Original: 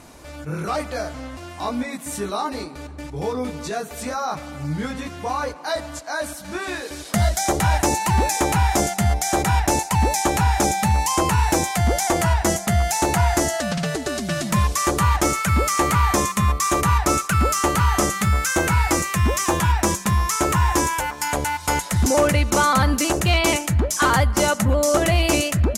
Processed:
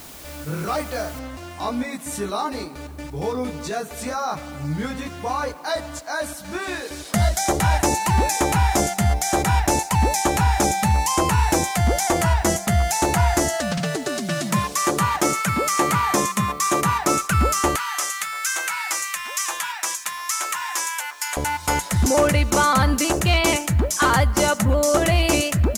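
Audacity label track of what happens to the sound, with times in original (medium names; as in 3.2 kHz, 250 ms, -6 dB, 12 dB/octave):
1.190000	1.190000	noise floor step -42 dB -57 dB
13.800000	17.190000	high-pass 120 Hz 24 dB/octave
17.760000	21.370000	high-pass 1.4 kHz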